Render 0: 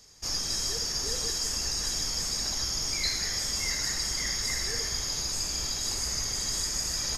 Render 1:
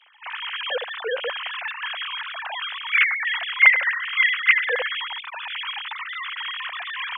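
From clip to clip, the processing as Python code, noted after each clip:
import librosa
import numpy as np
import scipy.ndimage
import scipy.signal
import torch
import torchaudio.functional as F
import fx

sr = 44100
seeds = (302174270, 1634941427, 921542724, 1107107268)

y = fx.sine_speech(x, sr)
y = fx.highpass(y, sr, hz=530.0, slope=6)
y = F.gain(torch.from_numpy(y), 6.5).numpy()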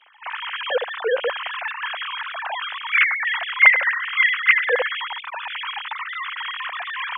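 y = fx.high_shelf(x, sr, hz=2400.0, db=-12.0)
y = F.gain(torch.from_numpy(y), 6.5).numpy()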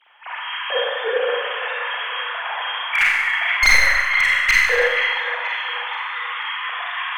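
y = np.minimum(x, 2.0 * 10.0 ** (-10.5 / 20.0) - x)
y = fx.echo_wet_bandpass(y, sr, ms=480, feedback_pct=43, hz=1400.0, wet_db=-6)
y = fx.rev_schroeder(y, sr, rt60_s=1.1, comb_ms=31, drr_db=-4.0)
y = F.gain(torch.from_numpy(y), -3.5).numpy()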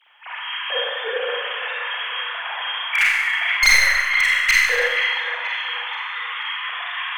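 y = fx.high_shelf(x, sr, hz=2000.0, db=9.5)
y = F.gain(torch.from_numpy(y), -5.5).numpy()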